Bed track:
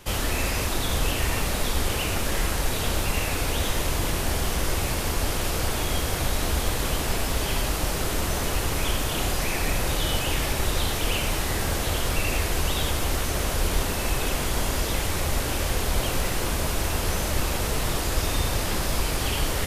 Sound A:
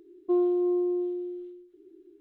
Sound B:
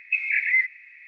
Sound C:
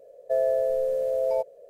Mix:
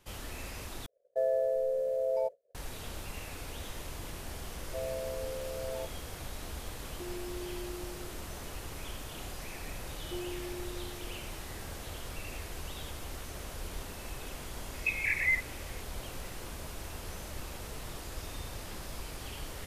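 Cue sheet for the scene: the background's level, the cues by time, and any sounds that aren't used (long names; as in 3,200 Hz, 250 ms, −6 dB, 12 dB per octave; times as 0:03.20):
bed track −16.5 dB
0:00.86: overwrite with C −5.5 dB + downward expander −38 dBFS
0:04.44: mix in C −14 dB
0:06.71: mix in A −13.5 dB + downward compressor, threshold −27 dBFS
0:09.82: mix in A −17 dB
0:14.74: mix in B −7.5 dB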